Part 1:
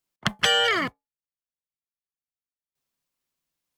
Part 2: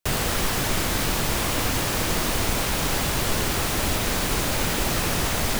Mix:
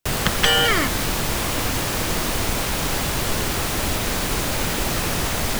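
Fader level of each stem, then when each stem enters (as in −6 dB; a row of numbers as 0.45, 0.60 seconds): +2.5, +1.0 decibels; 0.00, 0.00 seconds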